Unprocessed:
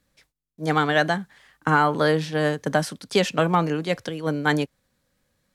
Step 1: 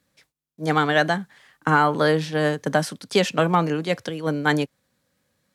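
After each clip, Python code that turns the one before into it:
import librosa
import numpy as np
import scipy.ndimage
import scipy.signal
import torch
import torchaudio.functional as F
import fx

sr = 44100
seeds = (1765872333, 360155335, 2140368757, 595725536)

y = scipy.signal.sosfilt(scipy.signal.butter(2, 90.0, 'highpass', fs=sr, output='sos'), x)
y = F.gain(torch.from_numpy(y), 1.0).numpy()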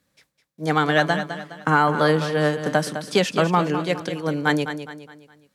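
y = fx.echo_feedback(x, sr, ms=207, feedback_pct=40, wet_db=-10)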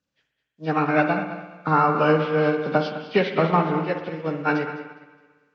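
y = fx.freq_compress(x, sr, knee_hz=1200.0, ratio=1.5)
y = fx.rev_spring(y, sr, rt60_s=1.6, pass_ms=(56,), chirp_ms=75, drr_db=4.5)
y = fx.upward_expand(y, sr, threshold_db=-38.0, expansion=1.5)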